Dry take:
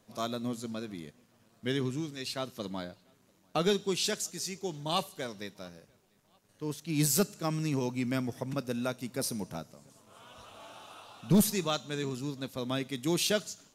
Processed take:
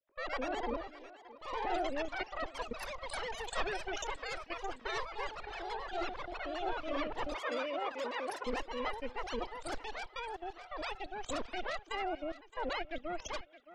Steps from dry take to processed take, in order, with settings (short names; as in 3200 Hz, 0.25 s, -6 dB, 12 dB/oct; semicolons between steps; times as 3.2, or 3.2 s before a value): sine-wave speech; added harmonics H 3 -16 dB, 5 -30 dB, 7 -37 dB, 8 -7 dB, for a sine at -14.5 dBFS; level quantiser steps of 19 dB; echoes that change speed 0.145 s, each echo +3 st, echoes 3; 7.36–8.46 Bessel high-pass 360 Hz, order 2; on a send: thinning echo 0.618 s, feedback 36%, high-pass 480 Hz, level -15 dB; on the sum: noise-modulated level, depth 60%; gain +4 dB